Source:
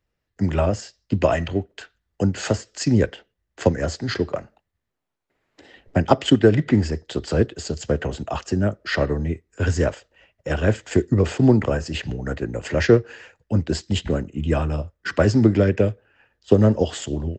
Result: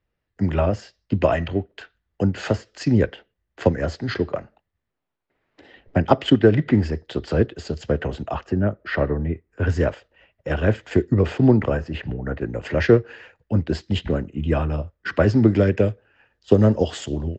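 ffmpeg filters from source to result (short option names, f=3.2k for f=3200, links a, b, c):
-af "asetnsamples=n=441:p=0,asendcmd='8.35 lowpass f 2200;9.69 lowpass f 3600;11.8 lowpass f 2100;12.41 lowpass f 3700;15.48 lowpass f 6500',lowpass=3.8k"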